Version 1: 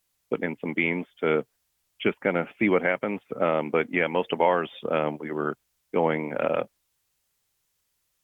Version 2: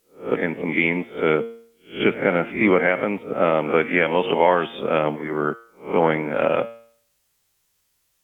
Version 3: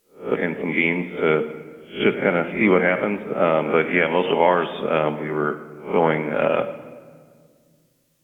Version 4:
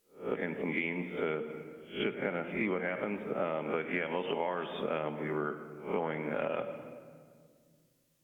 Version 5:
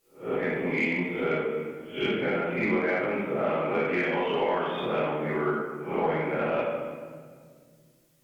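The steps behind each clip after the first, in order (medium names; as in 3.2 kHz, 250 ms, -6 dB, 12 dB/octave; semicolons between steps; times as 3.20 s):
reverse spectral sustain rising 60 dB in 0.33 s; de-hum 115.3 Hz, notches 36; trim +4.5 dB
reverberation RT60 1.9 s, pre-delay 5 ms, DRR 11 dB
compression 6:1, threshold -22 dBFS, peak gain reduction 10.5 dB; trim -7.5 dB
plate-style reverb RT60 0.98 s, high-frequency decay 0.9×, DRR -7 dB; in parallel at -5 dB: saturation -23 dBFS, distortion -14 dB; on the sum: trim -3.5 dB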